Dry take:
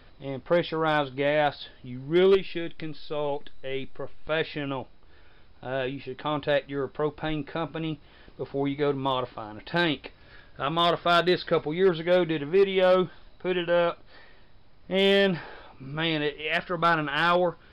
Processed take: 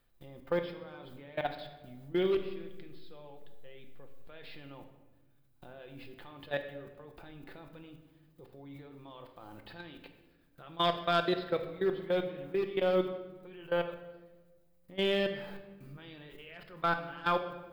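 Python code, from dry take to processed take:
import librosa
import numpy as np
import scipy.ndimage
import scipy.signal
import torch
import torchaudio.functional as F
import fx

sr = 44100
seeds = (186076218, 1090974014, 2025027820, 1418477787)

y = fx.dmg_noise_colour(x, sr, seeds[0], colour='violet', level_db=-60.0)
y = fx.level_steps(y, sr, step_db=22)
y = fx.room_shoebox(y, sr, seeds[1], volume_m3=770.0, walls='mixed', distance_m=0.8)
y = y * librosa.db_to_amplitude(-7.0)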